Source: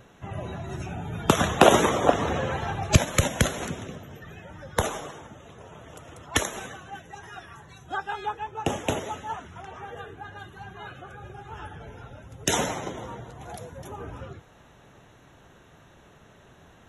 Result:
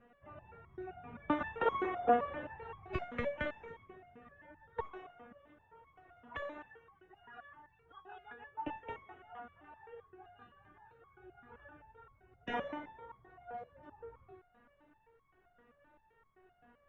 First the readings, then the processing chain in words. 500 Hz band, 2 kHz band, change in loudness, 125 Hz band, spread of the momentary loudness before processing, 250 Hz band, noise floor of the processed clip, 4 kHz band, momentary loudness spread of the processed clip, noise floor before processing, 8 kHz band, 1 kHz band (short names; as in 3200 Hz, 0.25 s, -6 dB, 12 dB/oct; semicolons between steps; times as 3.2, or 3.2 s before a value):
-13.0 dB, -14.0 dB, -13.5 dB, -24.0 dB, 21 LU, -14.5 dB, -71 dBFS, -24.5 dB, 24 LU, -54 dBFS, under -40 dB, -11.5 dB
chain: LPF 2300 Hz 24 dB/oct; stepped resonator 7.7 Hz 240–1100 Hz; gain +3.5 dB